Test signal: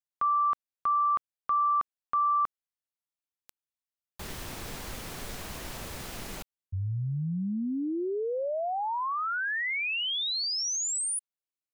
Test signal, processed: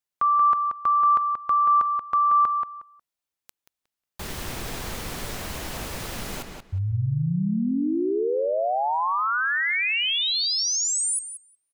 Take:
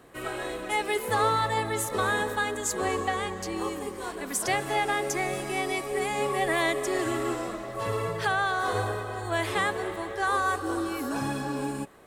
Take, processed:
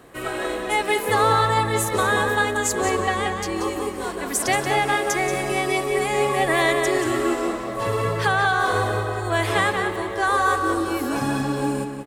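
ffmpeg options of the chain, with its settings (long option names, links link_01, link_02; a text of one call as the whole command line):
ffmpeg -i in.wav -filter_complex "[0:a]asplit=2[link_01][link_02];[link_02]adelay=181,lowpass=frequency=4500:poles=1,volume=-5dB,asplit=2[link_03][link_04];[link_04]adelay=181,lowpass=frequency=4500:poles=1,volume=0.2,asplit=2[link_05][link_06];[link_06]adelay=181,lowpass=frequency=4500:poles=1,volume=0.2[link_07];[link_01][link_03][link_05][link_07]amix=inputs=4:normalize=0,volume=5.5dB" out.wav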